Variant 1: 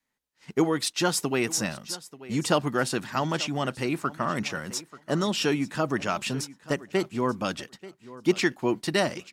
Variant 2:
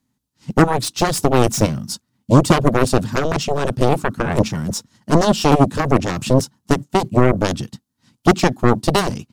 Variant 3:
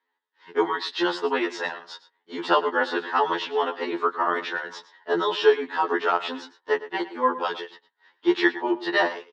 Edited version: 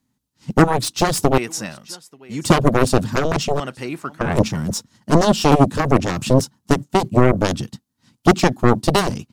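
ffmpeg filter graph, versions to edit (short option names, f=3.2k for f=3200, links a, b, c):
-filter_complex "[0:a]asplit=2[a][b];[1:a]asplit=3[c][d][e];[c]atrim=end=1.382[f];[a]atrim=start=1.378:end=2.452[g];[d]atrim=start=2.448:end=3.602[h];[b]atrim=start=3.598:end=4.212[i];[e]atrim=start=4.208[j];[f][g]acrossfade=d=0.004:c1=hsin:c2=hsin[k];[k][h]acrossfade=d=0.004:c1=hsin:c2=hsin[l];[l][i]acrossfade=d=0.004:c1=hsin:c2=hsin[m];[m][j]acrossfade=d=0.004:c1=hsin:c2=hsin"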